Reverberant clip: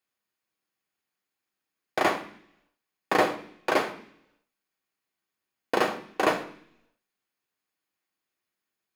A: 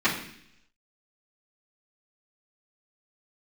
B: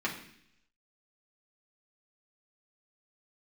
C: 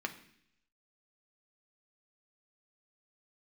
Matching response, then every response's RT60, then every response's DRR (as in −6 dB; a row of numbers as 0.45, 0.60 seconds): C; 0.65, 0.65, 0.65 seconds; −12.5, −4.5, 4.5 decibels